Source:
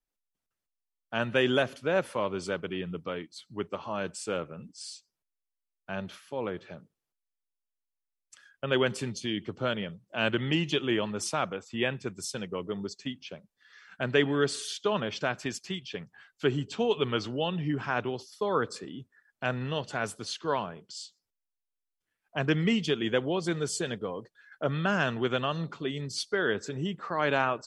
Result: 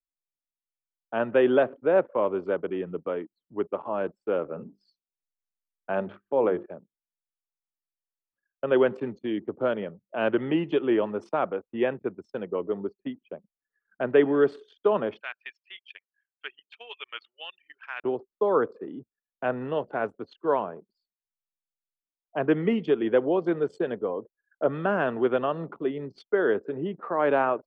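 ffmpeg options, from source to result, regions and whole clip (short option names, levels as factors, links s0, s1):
-filter_complex "[0:a]asettb=1/sr,asplit=3[s0][s1][s2];[s0]atrim=end=4.444[s3];[s1]atrim=start=4.44:end=6.66,asetpts=PTS-STARTPTS,afade=t=in:d=0.004:c=qsin,afade=t=out:st=2.216:d=0.004:c=qsin,lowpass=10000,bandreject=f=50:t=h:w=6,bandreject=f=100:t=h:w=6,bandreject=f=150:t=h:w=6,bandreject=f=200:t=h:w=6,bandreject=f=250:t=h:w=6,bandreject=f=300:t=h:w=6,bandreject=f=350:t=h:w=6,bandreject=f=400:t=h:w=6,acontrast=23[s4];[s2]atrim=start=6.656[s5];[s3][s4]acrossfade=d=0.004:c1=hsin:c2=qsin[s6];[s6][s5]acrossfade=d=0.004:c1=qsin:c2=hsin,asettb=1/sr,asplit=3[s7][s8][s9];[s7]atrim=end=15.204[s10];[s8]atrim=start=15.2:end=18.04,asetpts=PTS-STARTPTS,afade=t=in:d=0.004:c=qsin,afade=t=out:st=2.836:d=0.004:c=qsin,acrossover=split=5800[s11][s12];[s12]acompressor=threshold=0.00126:ratio=4:attack=1:release=60[s13];[s11][s13]amix=inputs=2:normalize=0,highpass=f=2300:t=q:w=1.8,highshelf=f=5700:g=9[s14];[s9]atrim=start=18.036[s15];[s10][s14]acrossfade=d=0.004:c1=hsin:c2=qsin[s16];[s16][s15]acrossfade=d=0.004:c1=qsin:c2=hsin,tiltshelf=f=1400:g=10,anlmdn=0.398,acrossover=split=280 3400:gain=0.112 1 0.0891[s17][s18][s19];[s17][s18][s19]amix=inputs=3:normalize=0"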